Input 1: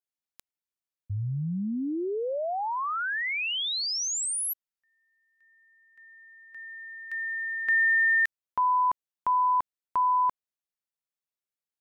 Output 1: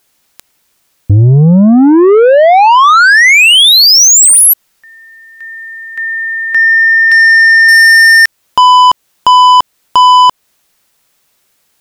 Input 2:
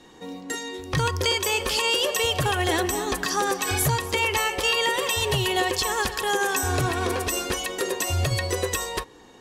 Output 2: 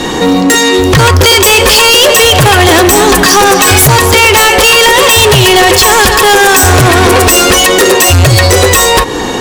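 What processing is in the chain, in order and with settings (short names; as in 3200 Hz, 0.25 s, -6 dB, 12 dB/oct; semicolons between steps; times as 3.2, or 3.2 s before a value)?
in parallel at +2.5 dB: compressor, threshold -33 dBFS; on the sum: soft clip -27 dBFS; maximiser +30.5 dB; gain -1.5 dB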